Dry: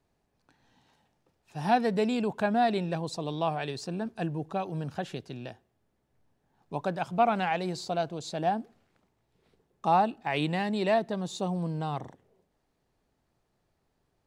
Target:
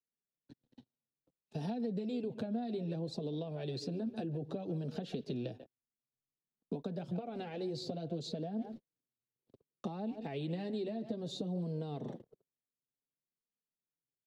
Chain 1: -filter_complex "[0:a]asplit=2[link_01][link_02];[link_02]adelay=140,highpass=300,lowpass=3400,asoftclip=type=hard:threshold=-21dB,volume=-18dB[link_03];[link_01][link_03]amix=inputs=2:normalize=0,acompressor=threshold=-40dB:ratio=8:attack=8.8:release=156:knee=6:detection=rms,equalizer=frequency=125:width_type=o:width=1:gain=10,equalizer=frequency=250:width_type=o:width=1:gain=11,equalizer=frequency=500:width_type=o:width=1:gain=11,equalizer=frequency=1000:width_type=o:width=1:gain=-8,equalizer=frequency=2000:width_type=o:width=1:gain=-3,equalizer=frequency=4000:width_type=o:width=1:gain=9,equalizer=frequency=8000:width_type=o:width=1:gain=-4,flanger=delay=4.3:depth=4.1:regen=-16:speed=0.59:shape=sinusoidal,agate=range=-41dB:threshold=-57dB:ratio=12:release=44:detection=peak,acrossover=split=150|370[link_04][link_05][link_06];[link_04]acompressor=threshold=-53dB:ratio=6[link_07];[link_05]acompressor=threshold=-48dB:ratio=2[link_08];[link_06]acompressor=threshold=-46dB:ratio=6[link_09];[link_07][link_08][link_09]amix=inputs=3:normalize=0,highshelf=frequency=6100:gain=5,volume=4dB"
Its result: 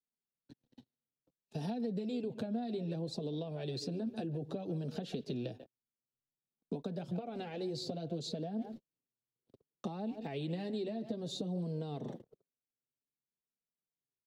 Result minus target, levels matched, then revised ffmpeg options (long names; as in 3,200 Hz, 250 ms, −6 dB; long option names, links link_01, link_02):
8,000 Hz band +3.5 dB
-filter_complex "[0:a]asplit=2[link_01][link_02];[link_02]adelay=140,highpass=300,lowpass=3400,asoftclip=type=hard:threshold=-21dB,volume=-18dB[link_03];[link_01][link_03]amix=inputs=2:normalize=0,acompressor=threshold=-40dB:ratio=8:attack=8.8:release=156:knee=6:detection=rms,equalizer=frequency=125:width_type=o:width=1:gain=10,equalizer=frequency=250:width_type=o:width=1:gain=11,equalizer=frequency=500:width_type=o:width=1:gain=11,equalizer=frequency=1000:width_type=o:width=1:gain=-8,equalizer=frequency=2000:width_type=o:width=1:gain=-3,equalizer=frequency=4000:width_type=o:width=1:gain=9,equalizer=frequency=8000:width_type=o:width=1:gain=-4,flanger=delay=4.3:depth=4.1:regen=-16:speed=0.59:shape=sinusoidal,agate=range=-41dB:threshold=-57dB:ratio=12:release=44:detection=peak,acrossover=split=150|370[link_04][link_05][link_06];[link_04]acompressor=threshold=-53dB:ratio=6[link_07];[link_05]acompressor=threshold=-48dB:ratio=2[link_08];[link_06]acompressor=threshold=-46dB:ratio=6[link_09];[link_07][link_08][link_09]amix=inputs=3:normalize=0,highshelf=frequency=6100:gain=-2,volume=4dB"